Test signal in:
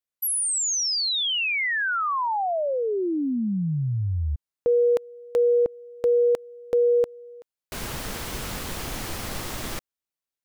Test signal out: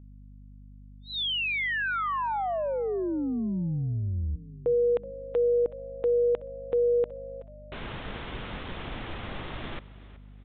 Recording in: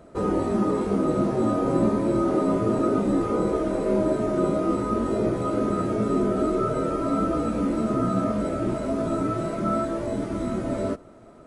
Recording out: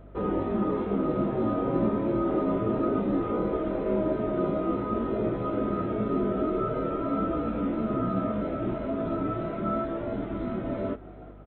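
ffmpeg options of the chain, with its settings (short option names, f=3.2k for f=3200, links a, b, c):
-filter_complex "[0:a]asplit=4[a][b][c][d];[b]adelay=374,afreqshift=62,volume=-18dB[e];[c]adelay=748,afreqshift=124,volume=-27.6dB[f];[d]adelay=1122,afreqshift=186,volume=-37.3dB[g];[a][e][f][g]amix=inputs=4:normalize=0,aeval=exprs='val(0)+0.00708*(sin(2*PI*50*n/s)+sin(2*PI*2*50*n/s)/2+sin(2*PI*3*50*n/s)/3+sin(2*PI*4*50*n/s)/4+sin(2*PI*5*50*n/s)/5)':c=same,aresample=8000,aresample=44100,volume=-4dB"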